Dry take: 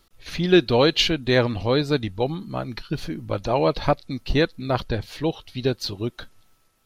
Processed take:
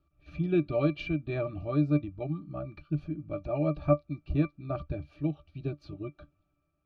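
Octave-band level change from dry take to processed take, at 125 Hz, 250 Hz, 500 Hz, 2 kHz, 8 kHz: -4.5 dB, -6.0 dB, -10.5 dB, -16.0 dB, under -30 dB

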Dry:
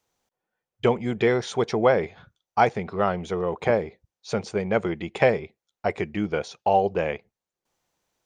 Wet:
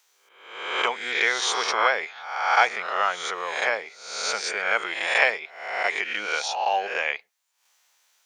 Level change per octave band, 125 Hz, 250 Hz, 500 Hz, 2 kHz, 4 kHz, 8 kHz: under -30 dB, -18.0 dB, -8.0 dB, +9.5 dB, +11.5 dB, +12.5 dB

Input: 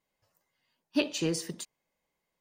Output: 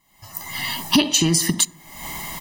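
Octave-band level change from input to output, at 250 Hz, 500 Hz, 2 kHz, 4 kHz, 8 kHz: +11.5 dB, +4.5 dB, +14.0 dB, +18.0 dB, +20.5 dB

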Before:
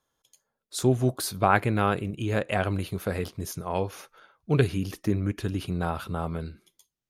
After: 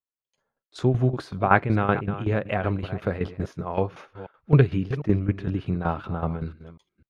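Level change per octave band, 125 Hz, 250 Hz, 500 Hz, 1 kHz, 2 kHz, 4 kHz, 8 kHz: +4.5 dB, +2.5 dB, +1.5 dB, +1.5 dB, +2.0 dB, -6.5 dB, under -15 dB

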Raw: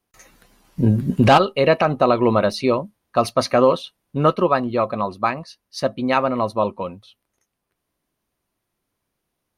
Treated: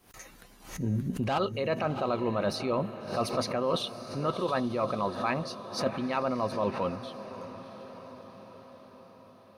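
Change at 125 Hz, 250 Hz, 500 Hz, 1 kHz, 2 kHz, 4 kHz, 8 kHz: -11.0 dB, -10.5 dB, -11.5 dB, -12.0 dB, -11.5 dB, -8.0 dB, -6.0 dB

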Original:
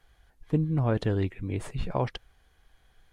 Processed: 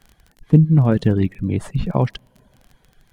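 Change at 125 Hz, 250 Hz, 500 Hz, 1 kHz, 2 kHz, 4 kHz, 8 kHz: +12.0 dB, +12.5 dB, +7.0 dB, +5.5 dB, +5.0 dB, +5.5 dB, no reading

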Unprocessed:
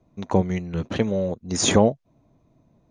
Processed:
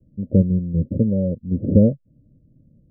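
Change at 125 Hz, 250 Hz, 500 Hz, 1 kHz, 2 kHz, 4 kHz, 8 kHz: +8.0 dB, +5.5 dB, -2.0 dB, under -30 dB, under -40 dB, under -40 dB, under -40 dB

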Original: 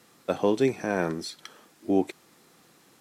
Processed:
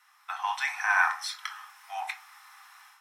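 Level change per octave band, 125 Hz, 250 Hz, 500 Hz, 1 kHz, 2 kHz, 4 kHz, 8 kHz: under -40 dB, under -40 dB, -24.0 dB, +5.5 dB, +11.5 dB, +2.5 dB, +2.0 dB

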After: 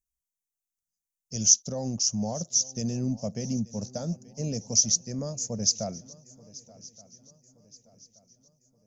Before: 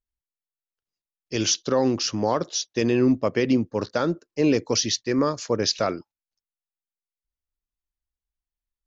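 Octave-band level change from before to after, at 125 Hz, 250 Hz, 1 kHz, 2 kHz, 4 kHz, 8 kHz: -1.5 dB, -9.0 dB, -14.0 dB, under -20 dB, -3.5 dB, no reading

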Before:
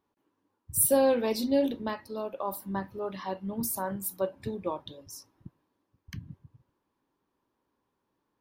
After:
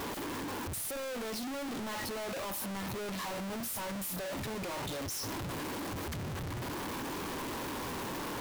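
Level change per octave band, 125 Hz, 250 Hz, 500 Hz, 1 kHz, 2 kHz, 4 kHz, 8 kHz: +2.5 dB, -5.0 dB, -9.0 dB, -2.0 dB, +4.5 dB, +4.0 dB, -6.0 dB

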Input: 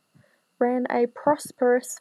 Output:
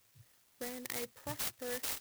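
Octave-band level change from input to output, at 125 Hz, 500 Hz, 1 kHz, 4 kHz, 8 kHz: -5.5 dB, -22.5 dB, -22.5 dB, +3.5 dB, -4.0 dB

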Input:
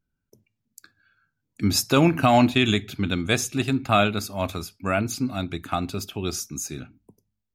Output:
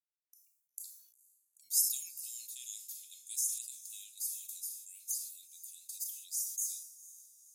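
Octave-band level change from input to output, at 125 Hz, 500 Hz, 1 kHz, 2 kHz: under -40 dB, under -40 dB, under -40 dB, under -35 dB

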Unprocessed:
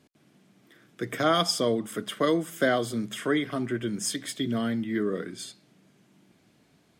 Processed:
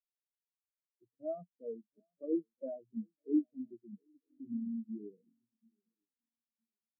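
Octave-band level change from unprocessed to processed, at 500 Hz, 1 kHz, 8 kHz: -15.0 dB, under -25 dB, under -40 dB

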